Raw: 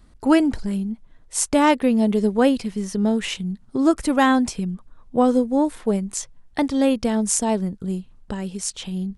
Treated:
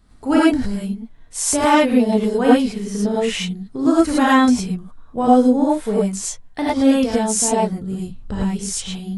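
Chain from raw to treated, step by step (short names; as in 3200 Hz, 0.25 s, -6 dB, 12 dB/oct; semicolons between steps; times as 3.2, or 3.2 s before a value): 7.99–8.82 low shelf 180 Hz +10 dB; non-linear reverb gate 0.13 s rising, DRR -7 dB; gain -4 dB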